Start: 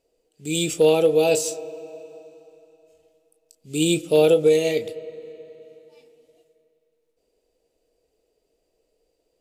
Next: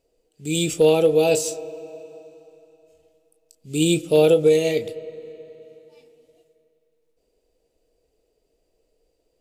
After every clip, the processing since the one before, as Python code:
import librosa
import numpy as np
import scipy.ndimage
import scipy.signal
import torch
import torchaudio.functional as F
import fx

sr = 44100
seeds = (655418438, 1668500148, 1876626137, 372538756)

y = fx.low_shelf(x, sr, hz=150.0, db=7.0)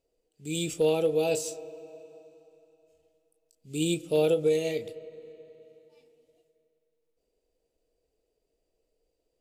y = fx.end_taper(x, sr, db_per_s=280.0)
y = y * librosa.db_to_amplitude(-8.5)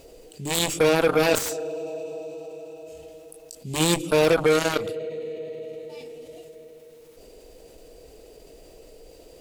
y = fx.cheby_harmonics(x, sr, harmonics=(7,), levels_db=(-13,), full_scale_db=-15.0)
y = fx.env_flatten(y, sr, amount_pct=50)
y = y * librosa.db_to_amplitude(3.5)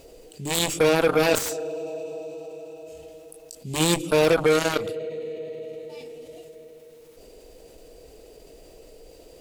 y = x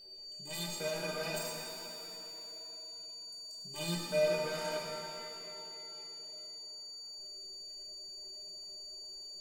y = fx.stiff_resonator(x, sr, f0_hz=180.0, decay_s=0.21, stiffness=0.03)
y = y + 10.0 ** (-44.0 / 20.0) * np.sin(2.0 * np.pi * 4600.0 * np.arange(len(y)) / sr)
y = fx.rev_shimmer(y, sr, seeds[0], rt60_s=2.5, semitones=7, shimmer_db=-8, drr_db=0.5)
y = y * librosa.db_to_amplitude(-7.0)